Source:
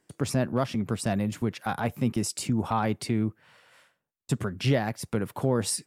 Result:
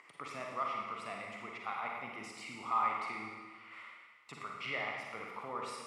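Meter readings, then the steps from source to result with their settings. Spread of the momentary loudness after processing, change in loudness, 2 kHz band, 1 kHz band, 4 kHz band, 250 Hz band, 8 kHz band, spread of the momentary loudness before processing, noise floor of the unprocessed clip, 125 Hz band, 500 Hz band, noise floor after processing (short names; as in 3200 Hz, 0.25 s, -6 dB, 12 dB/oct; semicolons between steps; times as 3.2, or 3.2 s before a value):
16 LU, -10.5 dB, -3.0 dB, -3.0 dB, -11.5 dB, -24.0 dB, -22.0 dB, 5 LU, -79 dBFS, -29.5 dB, -15.5 dB, -60 dBFS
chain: upward compressor, threshold -32 dBFS; double band-pass 1600 Hz, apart 0.79 oct; Schroeder reverb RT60 1.5 s, DRR -1 dB; gain +1 dB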